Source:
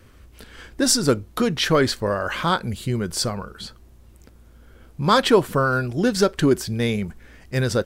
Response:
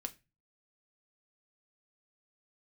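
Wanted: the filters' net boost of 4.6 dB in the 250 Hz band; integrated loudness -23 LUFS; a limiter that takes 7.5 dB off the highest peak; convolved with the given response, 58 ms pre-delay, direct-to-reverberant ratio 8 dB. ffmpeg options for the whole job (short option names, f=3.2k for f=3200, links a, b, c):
-filter_complex "[0:a]equalizer=f=250:t=o:g=5.5,alimiter=limit=-9dB:level=0:latency=1,asplit=2[a][b];[1:a]atrim=start_sample=2205,adelay=58[c];[b][c]afir=irnorm=-1:irlink=0,volume=-6dB[d];[a][d]amix=inputs=2:normalize=0,volume=-2.5dB"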